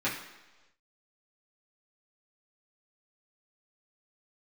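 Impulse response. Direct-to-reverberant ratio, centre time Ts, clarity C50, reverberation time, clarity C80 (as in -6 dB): -9.5 dB, 36 ms, 6.0 dB, 1.2 s, 9.0 dB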